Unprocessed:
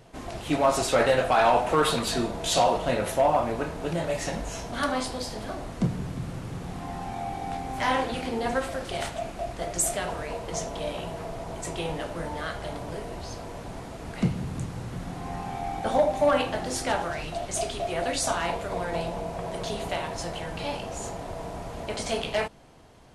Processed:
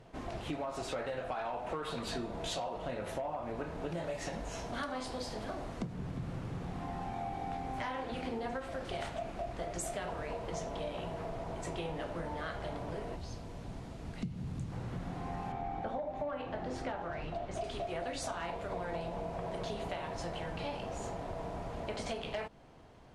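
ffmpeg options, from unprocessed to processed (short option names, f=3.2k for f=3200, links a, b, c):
-filter_complex "[0:a]asettb=1/sr,asplit=3[a][b][c];[a]atrim=end=3.924[d];[b]atrim=start=3.92:end=5.93,asetpts=PTS-STARTPTS,afade=t=in:d=0.004:c=qsin,afade=t=out:st=2.006:d=0.004:c=qsin,bass=f=250:g=-2,treble=f=4k:g=3[e];[c]atrim=start=5.926[f];[d][e]acrossfade=d=0.004:c1=hsin:c2=qsin[g];[g][f]acrossfade=d=0.004:c1=qsin:c2=hsin,asettb=1/sr,asplit=3[h][i][j];[h]atrim=end=13.164[k];[i]atrim=start=13.16:end=14.72,asetpts=PTS-STARTPTS,afade=t=in:d=0.004:c=qsin,afade=t=out:st=1.556:d=0.004:c=qsin,acrossover=split=270|3000[l][m][n];[m]acompressor=threshold=-47dB:ratio=4:attack=3.2:release=140:knee=2.83:detection=peak[o];[l][o][n]amix=inputs=3:normalize=0[p];[j]atrim=start=14.716[q];[k][p]acrossfade=d=0.004:c1=hsin:c2=qsin[r];[r][q]acrossfade=d=0.004:c1=qsin:c2=hsin,asettb=1/sr,asplit=3[s][t][u];[s]atrim=end=15.524[v];[t]atrim=start=15.52:end=17.64,asetpts=PTS-STARTPTS,afade=t=in:d=0.004:c=qsin,afade=t=out:st=2.116:d=0.004:c=qsin,aemphasis=mode=reproduction:type=75kf[w];[u]atrim=start=17.636[x];[v][w]acrossfade=d=0.004:c1=hsin:c2=qsin[y];[y][x]acrossfade=d=0.004:c1=qsin:c2=hsin,aemphasis=mode=reproduction:type=50kf,alimiter=limit=-19dB:level=0:latency=1:release=377,acompressor=threshold=-31dB:ratio=6,volume=-3.5dB"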